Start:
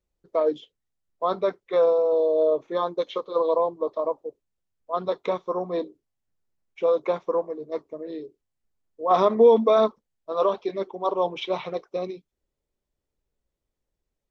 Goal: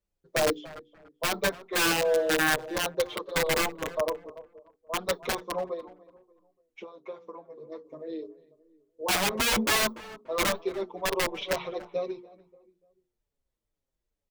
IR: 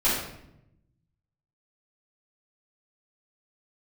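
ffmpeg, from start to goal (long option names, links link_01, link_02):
-filter_complex "[0:a]bandreject=frequency=60:width_type=h:width=6,bandreject=frequency=120:width_type=h:width=6,bandreject=frequency=180:width_type=h:width=6,bandreject=frequency=240:width_type=h:width=6,bandreject=frequency=300:width_type=h:width=6,bandreject=frequency=360:width_type=h:width=6,bandreject=frequency=420:width_type=h:width=6,bandreject=frequency=480:width_type=h:width=6,asettb=1/sr,asplit=3[link_01][link_02][link_03];[link_01]atrim=end=5.734[link_04];[link_02]atrim=start=5.73:end=7.85,asetpts=PTS-STARTPTS,afade=type=in:duration=0.004:curve=qsin,afade=type=out:start_time=2.116:duration=0.004:curve=qsin,acompressor=threshold=-35dB:ratio=8[link_05];[link_03]atrim=start=7.846[link_06];[link_04][link_05]acrossfade=duration=0.004:curve1=hsin:curve2=qsin[link_07];[link_07][link_06]acrossfade=duration=0.004:curve1=qsin:curve2=hsin,aeval=exprs='(mod(6.68*val(0)+1,2)-1)/6.68':channel_layout=same,asplit=2[link_08][link_09];[link_09]adelay=291,lowpass=frequency=1600:poles=1,volume=-16dB,asplit=2[link_10][link_11];[link_11]adelay=291,lowpass=frequency=1600:poles=1,volume=0.34,asplit=2[link_12][link_13];[link_13]adelay=291,lowpass=frequency=1600:poles=1,volume=0.34[link_14];[link_08][link_10][link_12][link_14]amix=inputs=4:normalize=0,asplit=2[link_15][link_16];[link_16]adelay=6.3,afreqshift=-2.2[link_17];[link_15][link_17]amix=inputs=2:normalize=1"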